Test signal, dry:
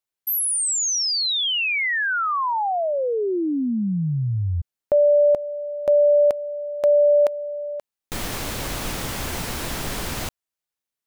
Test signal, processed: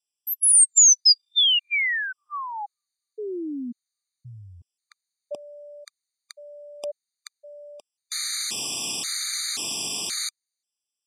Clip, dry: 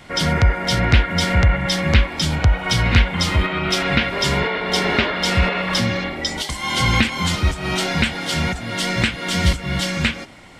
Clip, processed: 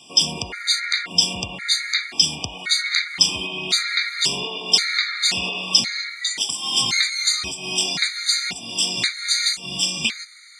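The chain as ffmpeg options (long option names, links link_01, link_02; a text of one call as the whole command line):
ffmpeg -i in.wav -af "highpass=220,equalizer=frequency=550:width_type=q:width=4:gain=-10,equalizer=frequency=970:width_type=q:width=4:gain=-6,equalizer=frequency=1500:width_type=q:width=4:gain=-7,equalizer=frequency=4400:width_type=q:width=4:gain=6,lowpass=frequency=9000:width=0.5412,lowpass=frequency=9000:width=1.3066,crystalizer=i=6.5:c=0,afftfilt=real='re*gt(sin(2*PI*0.94*pts/sr)*(1-2*mod(floor(b*sr/1024/1200),2)),0)':imag='im*gt(sin(2*PI*0.94*pts/sr)*(1-2*mod(floor(b*sr/1024/1200),2)),0)':win_size=1024:overlap=0.75,volume=-6.5dB" out.wav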